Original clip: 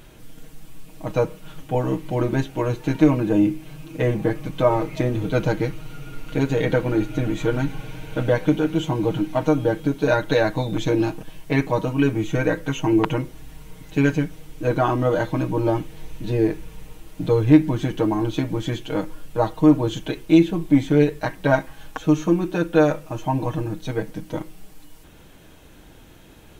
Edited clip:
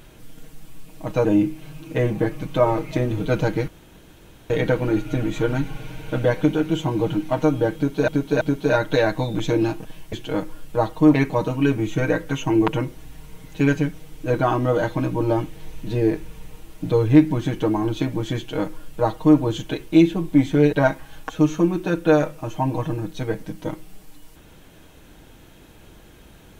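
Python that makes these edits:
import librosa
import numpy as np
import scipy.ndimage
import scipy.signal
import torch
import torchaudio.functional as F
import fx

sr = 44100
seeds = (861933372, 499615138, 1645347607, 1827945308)

y = fx.edit(x, sr, fx.cut(start_s=1.25, length_s=2.04),
    fx.room_tone_fill(start_s=5.72, length_s=0.82),
    fx.repeat(start_s=9.79, length_s=0.33, count=3),
    fx.duplicate(start_s=18.74, length_s=1.01, to_s=11.51),
    fx.cut(start_s=21.1, length_s=0.31), tone=tone)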